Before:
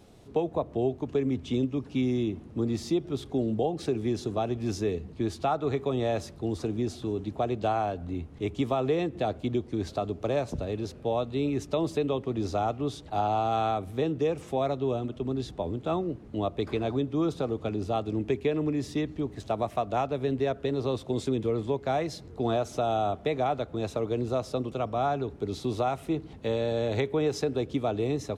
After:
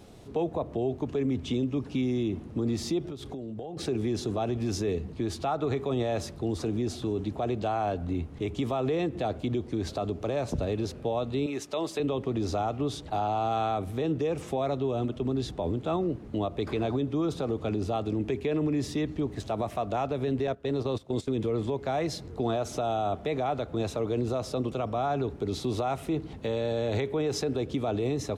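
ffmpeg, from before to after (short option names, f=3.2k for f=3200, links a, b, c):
-filter_complex "[0:a]asettb=1/sr,asplit=3[a][b][c];[a]atrim=end=3.094[d];[b]atrim=start=3.09:end=3.77,asetpts=PTS-STARTPTS,afade=t=in:d=0.004:c=qsin,afade=t=out:st=0.676:d=0.004:c=qsin,acompressor=threshold=-38dB:ratio=10:attack=3.2:release=140:knee=1:detection=peak[e];[c]atrim=start=3.766[f];[d][e]acrossfade=d=0.004:c1=hsin:c2=qsin[g];[g][f]acrossfade=d=0.004:c1=qsin:c2=hsin,asettb=1/sr,asplit=3[h][i][j];[h]atrim=end=11.464[k];[i]atrim=start=11.46:end=12,asetpts=PTS-STARTPTS,afade=t=in:d=0.004:c=qsin,afade=t=out:st=0.536:d=0.004:c=qsin,highpass=f=720:p=1[l];[j]atrim=start=11.996[m];[k][l]acrossfade=d=0.004:c1=hsin:c2=qsin[n];[n][m]acrossfade=d=0.004:c1=qsin:c2=hsin,asettb=1/sr,asplit=3[o][p][q];[o]atrim=end=20.474[r];[p]atrim=start=20.47:end=21.34,asetpts=PTS-STARTPTS,afade=t=in:d=0.004:c=qsin,afade=t=out:st=0.866:d=0.004:c=qsin,agate=range=-14dB:threshold=-33dB:ratio=16:release=100:detection=peak[s];[q]atrim=start=21.336[t];[r][s]acrossfade=d=0.004:c1=hsin:c2=qsin[u];[u][t]acrossfade=d=0.004:c1=qsin:c2=hsin,alimiter=level_in=0.5dB:limit=-24dB:level=0:latency=1:release=39,volume=-0.5dB,volume=4dB"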